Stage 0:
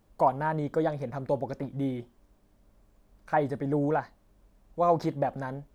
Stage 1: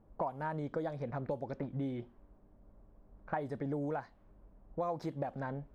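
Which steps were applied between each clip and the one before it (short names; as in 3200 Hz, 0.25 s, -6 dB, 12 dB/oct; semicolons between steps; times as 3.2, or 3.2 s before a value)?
low-pass opened by the level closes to 1000 Hz, open at -22.5 dBFS; compressor 5:1, threshold -37 dBFS, peak gain reduction 17 dB; gain +2 dB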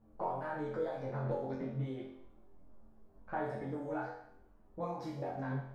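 flutter echo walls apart 3.9 m, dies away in 0.72 s; ensemble effect; gain -1 dB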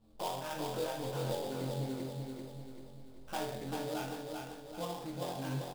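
sample-rate reducer 4200 Hz, jitter 20%; feedback echo 0.389 s, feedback 48%, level -4 dB; gain -1 dB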